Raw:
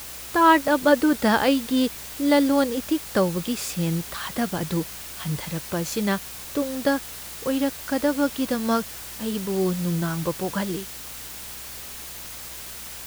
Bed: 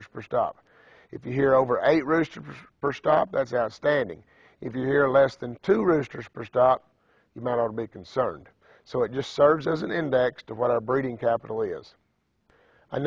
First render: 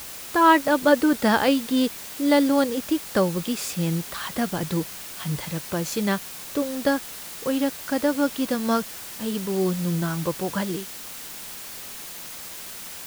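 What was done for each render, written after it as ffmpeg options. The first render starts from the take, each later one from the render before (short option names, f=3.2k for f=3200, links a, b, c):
-af "bandreject=f=60:t=h:w=4,bandreject=f=120:t=h:w=4"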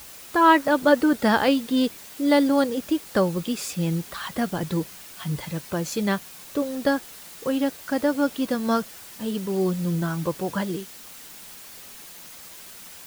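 -af "afftdn=nr=6:nf=-38"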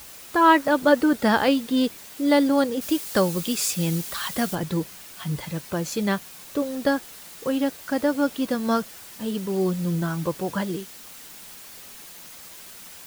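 -filter_complex "[0:a]asettb=1/sr,asplit=3[a][b][c];[a]atrim=end=2.814[d];[b]atrim=start=2.81:end=4.55,asetpts=PTS-STARTPTS,afade=t=in:d=0.004:c=qsin,afade=t=out:st=1.736:d=0.004:c=qsin,highshelf=f=3.1k:g=9[e];[c]atrim=start=4.546[f];[d][e]acrossfade=d=0.004:c1=hsin:c2=qsin[g];[g][f]acrossfade=d=0.004:c1=qsin:c2=hsin"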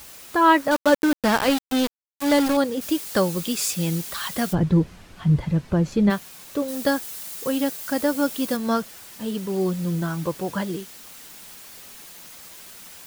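-filter_complex "[0:a]asettb=1/sr,asplit=3[a][b][c];[a]atrim=end=0.714[d];[b]atrim=start=0.71:end=2.57,asetpts=PTS-STARTPTS,afade=t=in:d=0.004:c=qsin,afade=t=out:st=1.856:d=0.004:c=qsin,aeval=exprs='val(0)*gte(abs(val(0)),0.0841)':c=same[e];[c]atrim=start=2.566[f];[d][e]acrossfade=d=0.004:c1=hsin:c2=qsin[g];[g][f]acrossfade=d=0.004:c1=qsin:c2=hsin,asplit=3[h][i][j];[h]afade=t=out:st=4.52:d=0.02[k];[i]aemphasis=mode=reproduction:type=riaa,afade=t=in:st=4.52:d=0.02,afade=t=out:st=6.09:d=0.02[l];[j]afade=t=in:st=6.09:d=0.02[m];[k][l][m]amix=inputs=3:normalize=0,asettb=1/sr,asplit=3[n][o][p];[n]atrim=end=6.684[q];[o]atrim=start=6.68:end=8.57,asetpts=PTS-STARTPTS,afade=t=in:d=0.004:c=qsin,afade=t=out:st=1.886:d=0.004:c=qsin,highshelf=f=5.3k:g=9.5[r];[p]atrim=start=8.566[s];[q][r]acrossfade=d=0.004:c1=hsin:c2=qsin[t];[t][s]acrossfade=d=0.004:c1=qsin:c2=hsin"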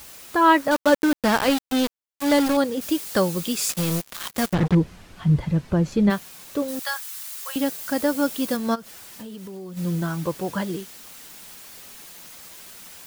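-filter_complex "[0:a]asettb=1/sr,asplit=3[a][b][c];[a]atrim=end=3.694[d];[b]atrim=start=3.69:end=4.75,asetpts=PTS-STARTPTS,afade=t=in:d=0.004:c=qsin,afade=t=out:st=1.056:d=0.004:c=qsin,acrusher=bits=3:mix=0:aa=0.5[e];[c]atrim=start=4.746[f];[d][e]acrossfade=d=0.004:c1=hsin:c2=qsin[g];[g][f]acrossfade=d=0.004:c1=qsin:c2=hsin,asettb=1/sr,asplit=3[h][i][j];[h]atrim=end=6.794[k];[i]atrim=start=6.79:end=7.56,asetpts=PTS-STARTPTS,afade=t=in:d=0.004:c=qsin,afade=t=out:st=0.766:d=0.004:c=qsin,highpass=f=930:w=0.5412,highpass=f=930:w=1.3066[l];[j]atrim=start=7.556[m];[k][l]acrossfade=d=0.004:c1=hsin:c2=qsin[n];[n][m]acrossfade=d=0.004:c1=qsin:c2=hsin,asplit=3[o][p][q];[o]afade=t=out:st=8.74:d=0.02[r];[p]acompressor=threshold=-34dB:ratio=8:attack=3.2:release=140:knee=1:detection=peak,afade=t=in:st=8.74:d=0.02,afade=t=out:st=9.76:d=0.02[s];[q]afade=t=in:st=9.76:d=0.02[t];[r][s][t]amix=inputs=3:normalize=0"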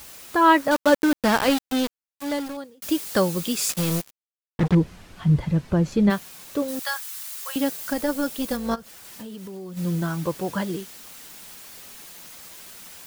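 -filter_complex "[0:a]asettb=1/sr,asplit=3[a][b][c];[a]atrim=end=7.934[d];[b]atrim=start=7.93:end=9.05,asetpts=PTS-STARTPTS,afade=t=in:d=0.004:c=qsin,afade=t=out:st=1.116:d=0.004:c=qsin,tremolo=f=280:d=0.519[e];[c]atrim=start=9.046[f];[d][e]acrossfade=d=0.004:c1=hsin:c2=qsin[g];[g][f]acrossfade=d=0.004:c1=qsin:c2=hsin,asplit=4[h][i][j][k];[h]atrim=end=2.82,asetpts=PTS-STARTPTS,afade=t=out:st=1.56:d=1.26[l];[i]atrim=start=2.82:end=4.11,asetpts=PTS-STARTPTS,afade=t=in:d=0.004:c=hsin,afade=t=out:st=1.286:d=0.004:c=hsin[m];[j]atrim=start=4.11:end=4.59,asetpts=PTS-STARTPTS,volume=0[n];[k]atrim=start=4.59,asetpts=PTS-STARTPTS,afade=t=in:d=0.004:c=hsin[o];[l][m][n][o]concat=n=4:v=0:a=1"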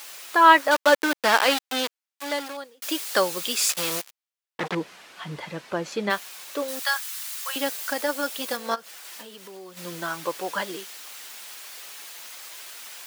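-af "highpass=470,equalizer=f=2.6k:w=0.4:g=5"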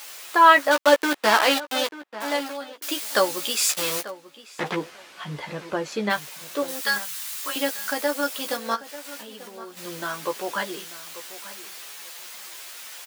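-filter_complex "[0:a]asplit=2[a][b];[b]adelay=14,volume=-6dB[c];[a][c]amix=inputs=2:normalize=0,asplit=2[d][e];[e]adelay=890,lowpass=f=2.1k:p=1,volume=-15dB,asplit=2[f][g];[g]adelay=890,lowpass=f=2.1k:p=1,volume=0.17[h];[d][f][h]amix=inputs=3:normalize=0"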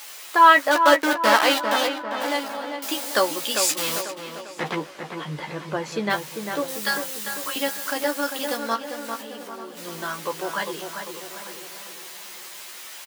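-filter_complex "[0:a]asplit=2[a][b];[b]adelay=13,volume=-12.5dB[c];[a][c]amix=inputs=2:normalize=0,asplit=2[d][e];[e]adelay=397,lowpass=f=2.1k:p=1,volume=-6dB,asplit=2[f][g];[g]adelay=397,lowpass=f=2.1k:p=1,volume=0.51,asplit=2[h][i];[i]adelay=397,lowpass=f=2.1k:p=1,volume=0.51,asplit=2[j][k];[k]adelay=397,lowpass=f=2.1k:p=1,volume=0.51,asplit=2[l][m];[m]adelay=397,lowpass=f=2.1k:p=1,volume=0.51,asplit=2[n][o];[o]adelay=397,lowpass=f=2.1k:p=1,volume=0.51[p];[d][f][h][j][l][n][p]amix=inputs=7:normalize=0"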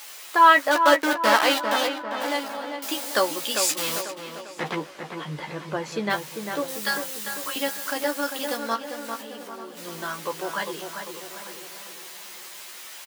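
-af "volume=-1.5dB"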